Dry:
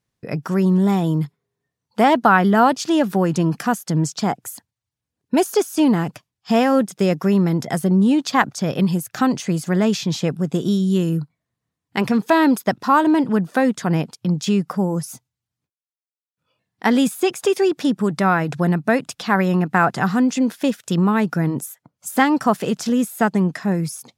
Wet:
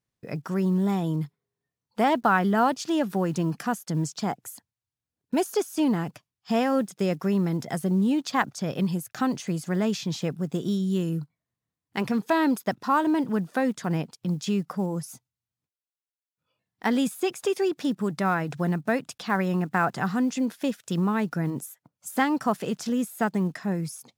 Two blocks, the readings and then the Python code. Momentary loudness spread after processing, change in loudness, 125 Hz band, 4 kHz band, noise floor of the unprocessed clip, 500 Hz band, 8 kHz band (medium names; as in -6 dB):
8 LU, -7.5 dB, -7.5 dB, -7.5 dB, under -85 dBFS, -7.5 dB, -7.5 dB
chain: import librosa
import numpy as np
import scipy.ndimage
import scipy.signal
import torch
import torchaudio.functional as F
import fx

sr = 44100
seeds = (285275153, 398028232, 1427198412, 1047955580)

y = fx.block_float(x, sr, bits=7)
y = y * librosa.db_to_amplitude(-7.5)